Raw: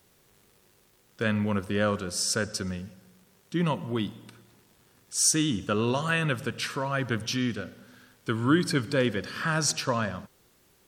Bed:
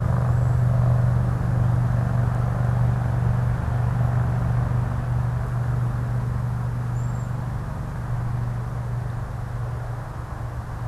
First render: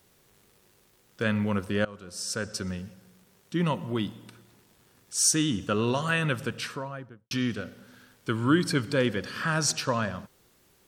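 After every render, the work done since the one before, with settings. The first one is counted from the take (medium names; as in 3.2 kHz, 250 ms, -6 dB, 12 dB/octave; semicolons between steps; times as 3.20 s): 1.85–2.73 s: fade in, from -21 dB; 6.45–7.31 s: studio fade out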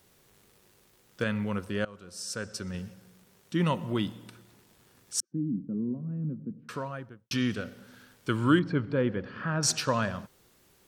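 1.24–2.74 s: gain -4 dB; 5.20–6.69 s: Butterworth band-pass 210 Hz, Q 1.6; 8.59–9.63 s: tape spacing loss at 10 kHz 42 dB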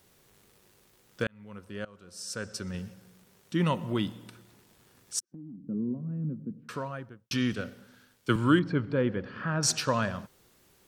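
1.27–2.48 s: fade in; 5.19–5.69 s: compression 4:1, threshold -44 dBFS; 7.53–8.36 s: three bands expanded up and down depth 40%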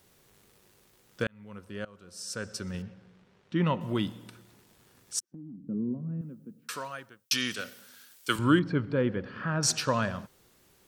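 2.82–3.81 s: low-pass 3.2 kHz; 6.21–8.39 s: tilt EQ +4 dB/octave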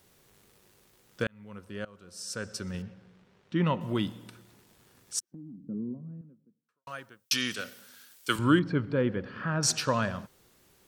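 5.14–6.87 s: studio fade out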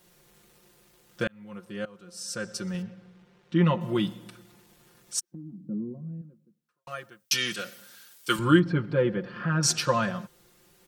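comb 5.7 ms, depth 88%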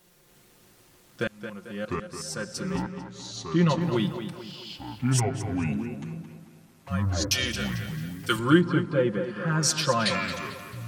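ever faster or slower copies 297 ms, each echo -5 st, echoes 2; on a send: tape echo 220 ms, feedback 50%, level -8.5 dB, low-pass 4.5 kHz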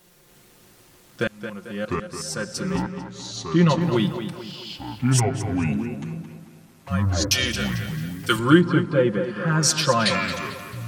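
trim +4.5 dB; peak limiter -2 dBFS, peak gain reduction 1 dB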